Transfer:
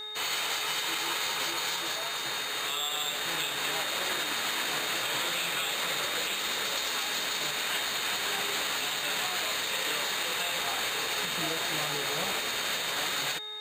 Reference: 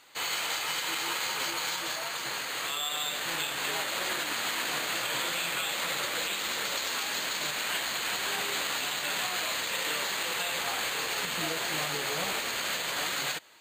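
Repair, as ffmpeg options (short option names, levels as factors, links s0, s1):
-af "bandreject=f=425.1:t=h:w=4,bandreject=f=850.2:t=h:w=4,bandreject=f=1275.3:t=h:w=4,bandreject=f=1700.4:t=h:w=4,bandreject=f=2125.5:t=h:w=4,bandreject=f=3700:w=30"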